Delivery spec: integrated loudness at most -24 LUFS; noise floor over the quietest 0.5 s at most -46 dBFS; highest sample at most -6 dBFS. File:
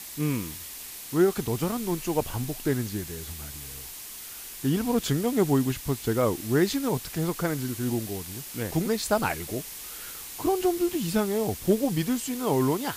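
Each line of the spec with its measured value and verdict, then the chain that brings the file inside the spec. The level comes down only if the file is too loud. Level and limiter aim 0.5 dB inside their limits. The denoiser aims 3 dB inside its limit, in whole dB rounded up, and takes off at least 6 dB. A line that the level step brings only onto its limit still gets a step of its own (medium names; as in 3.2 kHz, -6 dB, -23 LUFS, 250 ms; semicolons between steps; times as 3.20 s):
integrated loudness -28.0 LUFS: pass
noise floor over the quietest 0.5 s -41 dBFS: fail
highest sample -10.0 dBFS: pass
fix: noise reduction 8 dB, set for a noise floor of -41 dBFS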